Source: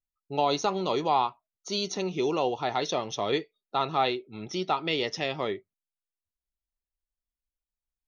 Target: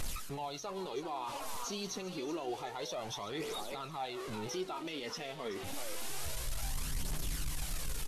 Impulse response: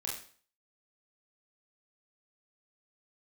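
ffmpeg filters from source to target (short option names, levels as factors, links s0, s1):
-filter_complex "[0:a]aeval=exprs='val(0)+0.5*0.0188*sgn(val(0))':c=same,areverse,acompressor=threshold=0.02:ratio=6,areverse,asplit=6[s0][s1][s2][s3][s4][s5];[s1]adelay=379,afreqshift=130,volume=0.224[s6];[s2]adelay=758,afreqshift=260,volume=0.107[s7];[s3]adelay=1137,afreqshift=390,volume=0.0513[s8];[s4]adelay=1516,afreqshift=520,volume=0.0248[s9];[s5]adelay=1895,afreqshift=650,volume=0.0119[s10];[s0][s6][s7][s8][s9][s10]amix=inputs=6:normalize=0,alimiter=level_in=3.76:limit=0.0631:level=0:latency=1:release=347,volume=0.266,aphaser=in_gain=1:out_gain=1:delay=4.6:decay=0.44:speed=0.28:type=triangular,volume=1.58" -ar 32000 -c:a libvorbis -b:a 48k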